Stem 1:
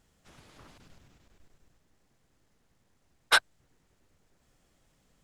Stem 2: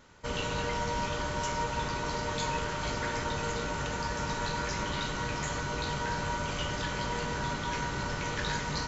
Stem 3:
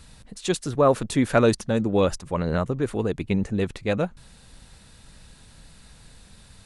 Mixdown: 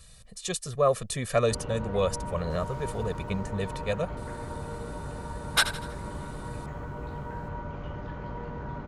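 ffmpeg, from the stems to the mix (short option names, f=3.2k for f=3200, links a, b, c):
-filter_complex "[0:a]adelay=2250,volume=-3dB,asplit=2[a][b];[b]volume=-12.5dB[c];[1:a]lowpass=1k,equalizer=f=61:w=0.48:g=4,adelay=1250,volume=-3.5dB[d];[2:a]aecho=1:1:1.7:0.91,volume=-9dB[e];[c]aecho=0:1:81|162|243|324|405|486:1|0.43|0.185|0.0795|0.0342|0.0147[f];[a][d][e][f]amix=inputs=4:normalize=0,highshelf=f=4.4k:g=8.5"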